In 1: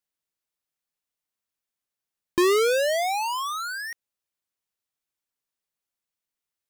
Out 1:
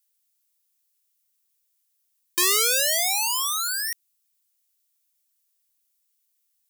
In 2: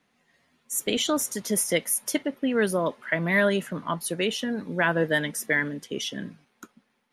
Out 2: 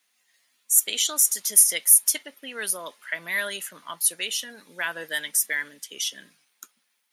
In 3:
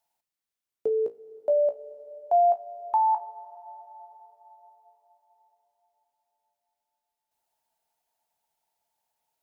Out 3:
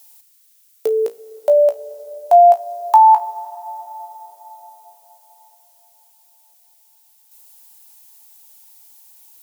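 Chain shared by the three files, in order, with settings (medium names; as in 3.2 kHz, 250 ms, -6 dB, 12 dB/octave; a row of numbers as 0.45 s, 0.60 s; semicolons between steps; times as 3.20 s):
differentiator; peak normalisation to -1.5 dBFS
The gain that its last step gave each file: +13.0 dB, +9.0 dB, +31.5 dB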